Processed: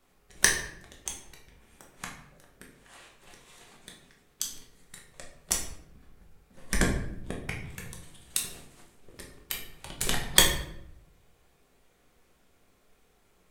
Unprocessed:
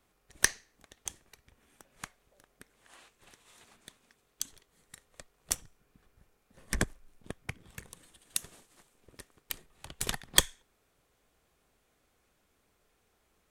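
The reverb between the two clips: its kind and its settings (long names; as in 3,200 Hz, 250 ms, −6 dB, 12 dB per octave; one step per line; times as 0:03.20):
rectangular room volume 170 cubic metres, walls mixed, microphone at 1.1 metres
level +2 dB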